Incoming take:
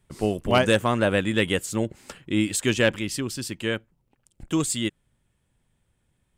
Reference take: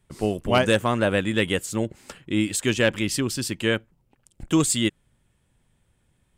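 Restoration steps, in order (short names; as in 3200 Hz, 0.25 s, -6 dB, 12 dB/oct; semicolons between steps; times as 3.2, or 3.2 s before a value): interpolate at 0.51/3.58/4.08, 1.3 ms; gain 0 dB, from 2.96 s +4 dB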